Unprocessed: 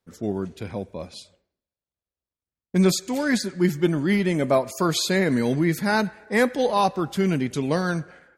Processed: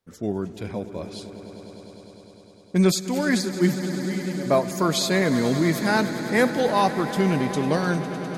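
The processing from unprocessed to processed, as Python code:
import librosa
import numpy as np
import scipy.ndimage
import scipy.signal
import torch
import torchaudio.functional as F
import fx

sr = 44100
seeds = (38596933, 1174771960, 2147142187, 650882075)

y = fx.comb_fb(x, sr, f0_hz=94.0, decay_s=1.7, harmonics='all', damping=0.0, mix_pct=80, at=(3.73, 4.45), fade=0.02)
y = fx.echo_swell(y, sr, ms=101, loudest=5, wet_db=-16.5)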